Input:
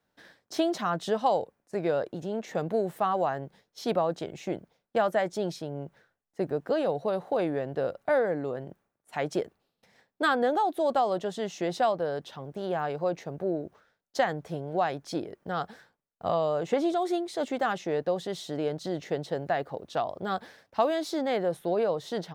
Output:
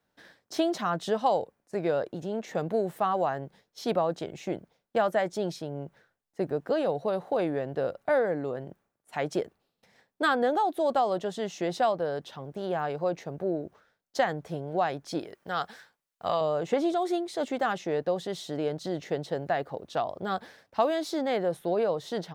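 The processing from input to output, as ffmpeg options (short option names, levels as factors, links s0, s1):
-filter_complex "[0:a]asettb=1/sr,asplit=3[s0][s1][s2];[s0]atrim=end=15.194[s3];[s1]atrim=start=15.19:end=16.41,asetpts=PTS-STARTPTS,afade=t=in:d=0.004:c=qsin,afade=t=out:st=1.216:d=0.004:c=qsin,tiltshelf=f=780:g=-6[s4];[s2]atrim=start=16.406[s5];[s3][s4]acrossfade=d=0.004:c1=hsin:c2=qsin[s6];[s6][s5]acrossfade=d=0.004:c1=qsin:c2=hsin"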